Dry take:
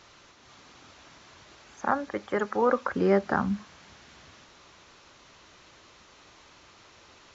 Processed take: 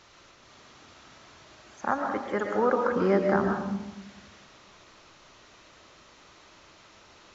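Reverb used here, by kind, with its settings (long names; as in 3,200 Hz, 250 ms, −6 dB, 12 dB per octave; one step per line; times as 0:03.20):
comb and all-pass reverb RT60 1 s, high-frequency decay 0.3×, pre-delay 85 ms, DRR 2.5 dB
level −1.5 dB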